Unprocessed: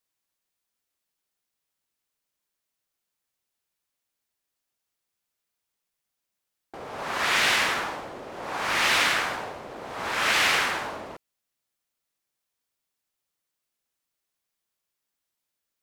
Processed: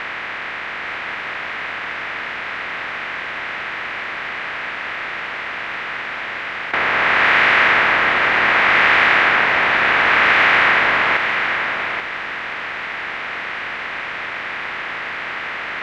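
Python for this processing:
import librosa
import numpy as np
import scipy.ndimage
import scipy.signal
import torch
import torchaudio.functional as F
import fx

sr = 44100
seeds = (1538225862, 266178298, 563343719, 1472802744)

p1 = fx.bin_compress(x, sr, power=0.2)
p2 = fx.lowpass_res(p1, sr, hz=2000.0, q=1.6)
p3 = p2 + fx.echo_single(p2, sr, ms=834, db=-6.5, dry=0)
y = F.gain(torch.from_numpy(p3), 2.0).numpy()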